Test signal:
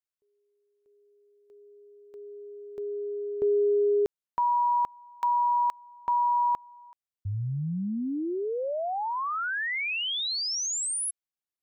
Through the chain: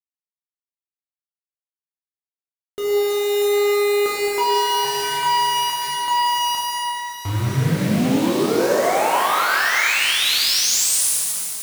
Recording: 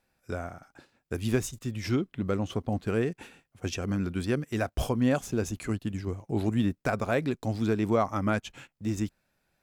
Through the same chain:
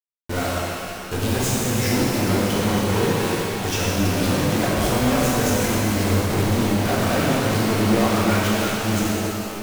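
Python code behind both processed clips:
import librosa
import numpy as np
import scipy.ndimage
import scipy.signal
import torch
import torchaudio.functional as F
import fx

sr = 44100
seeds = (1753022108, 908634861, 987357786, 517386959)

y = fx.echo_split(x, sr, split_hz=310.0, low_ms=218, high_ms=322, feedback_pct=52, wet_db=-16)
y = fx.quant_companded(y, sr, bits=2)
y = fx.rev_shimmer(y, sr, seeds[0], rt60_s=2.6, semitones=12, shimmer_db=-8, drr_db=-5.5)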